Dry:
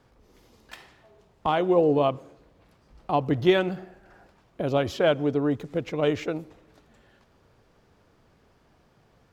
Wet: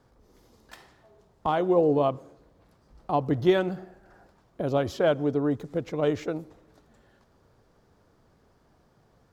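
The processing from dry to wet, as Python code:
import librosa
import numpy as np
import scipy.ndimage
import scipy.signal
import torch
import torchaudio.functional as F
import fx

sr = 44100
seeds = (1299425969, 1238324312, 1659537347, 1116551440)

y = fx.peak_eq(x, sr, hz=2600.0, db=-7.0, octaves=0.91)
y = F.gain(torch.from_numpy(y), -1.0).numpy()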